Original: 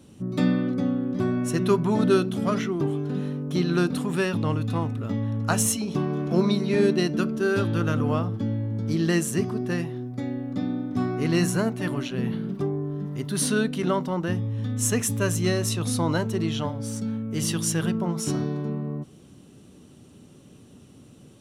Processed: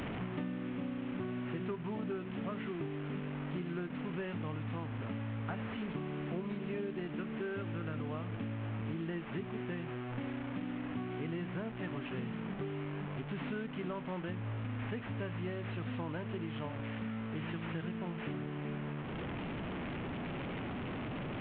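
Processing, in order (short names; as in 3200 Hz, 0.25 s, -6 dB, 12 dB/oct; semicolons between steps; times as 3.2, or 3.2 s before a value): delta modulation 16 kbps, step -27.5 dBFS; compressor, threshold -30 dBFS, peak gain reduction 14.5 dB; gain -6 dB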